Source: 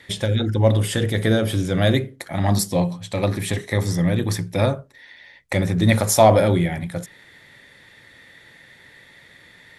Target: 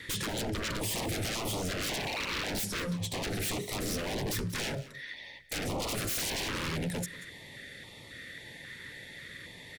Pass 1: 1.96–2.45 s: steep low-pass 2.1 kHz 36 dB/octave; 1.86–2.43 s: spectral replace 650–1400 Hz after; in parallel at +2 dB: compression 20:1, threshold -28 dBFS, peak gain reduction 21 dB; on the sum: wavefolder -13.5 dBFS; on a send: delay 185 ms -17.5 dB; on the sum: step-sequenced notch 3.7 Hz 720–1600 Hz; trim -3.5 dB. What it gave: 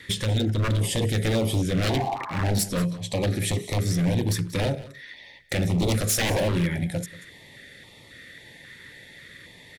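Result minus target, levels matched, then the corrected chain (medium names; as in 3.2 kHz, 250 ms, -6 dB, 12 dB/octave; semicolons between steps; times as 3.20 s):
wavefolder: distortion -25 dB
1.96–2.45 s: steep low-pass 2.1 kHz 36 dB/octave; 1.86–2.43 s: spectral replace 650–1400 Hz after; in parallel at +2 dB: compression 20:1, threshold -28 dBFS, peak gain reduction 21 dB; on the sum: wavefolder -24 dBFS; on a send: delay 185 ms -17.5 dB; on the sum: step-sequenced notch 3.7 Hz 720–1600 Hz; trim -3.5 dB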